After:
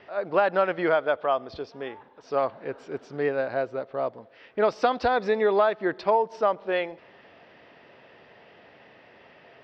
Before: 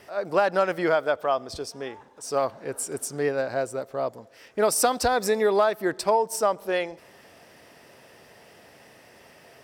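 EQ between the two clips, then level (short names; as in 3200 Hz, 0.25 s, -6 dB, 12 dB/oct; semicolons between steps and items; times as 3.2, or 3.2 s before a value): inverse Chebyshev low-pass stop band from 8600 Hz, stop band 50 dB; low shelf 120 Hz -6.5 dB; 0.0 dB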